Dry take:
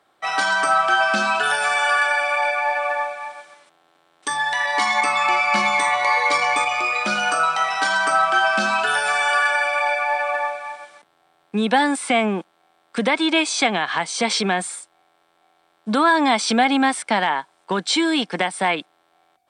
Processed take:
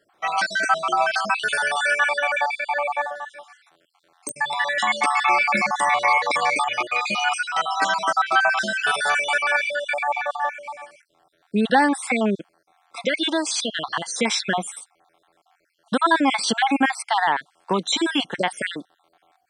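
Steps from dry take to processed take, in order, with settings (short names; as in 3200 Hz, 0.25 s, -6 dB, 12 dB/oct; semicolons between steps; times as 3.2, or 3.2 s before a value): random spectral dropouts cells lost 49%; 13.03–13.6 low shelf 330 Hz -8 dB; pops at 4.29, -16 dBFS; gain +1 dB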